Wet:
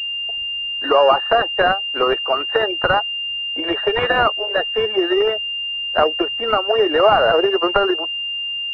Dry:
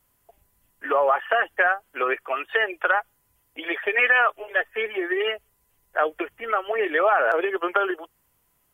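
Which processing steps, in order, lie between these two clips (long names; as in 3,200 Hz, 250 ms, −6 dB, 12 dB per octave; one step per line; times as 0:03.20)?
in parallel at −1 dB: downward compressor, threshold −30 dBFS, peak gain reduction 14.5 dB
on the sum: switching amplifier with a slow clock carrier 2,800 Hz
level +6 dB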